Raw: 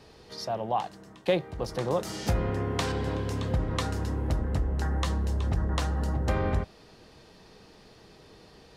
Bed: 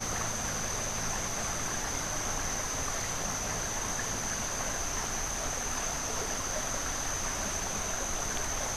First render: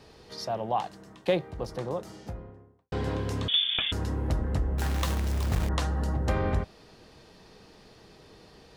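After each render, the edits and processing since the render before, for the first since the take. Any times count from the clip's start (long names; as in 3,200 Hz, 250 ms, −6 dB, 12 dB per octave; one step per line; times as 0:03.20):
0:01.14–0:02.92: fade out and dull
0:03.48–0:03.92: voice inversion scrambler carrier 3,500 Hz
0:04.78–0:05.69: log-companded quantiser 4 bits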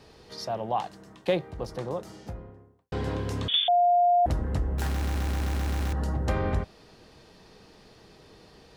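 0:03.68–0:04.26: beep over 705 Hz −17.5 dBFS
0:04.89: stutter in place 0.13 s, 8 plays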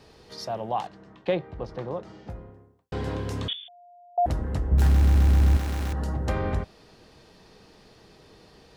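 0:00.87–0:02.30: low-pass filter 3,400 Hz
0:03.53–0:04.18: guitar amp tone stack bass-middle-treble 6-0-2
0:04.71–0:05.57: low-shelf EQ 240 Hz +11.5 dB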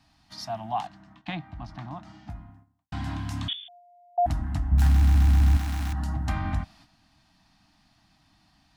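elliptic band-stop filter 300–680 Hz, stop band 50 dB
noise gate −52 dBFS, range −8 dB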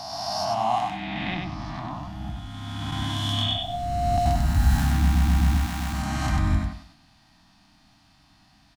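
peak hold with a rise ahead of every peak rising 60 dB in 2.49 s
repeating echo 96 ms, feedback 24%, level −3.5 dB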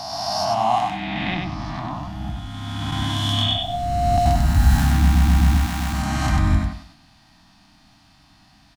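level +4.5 dB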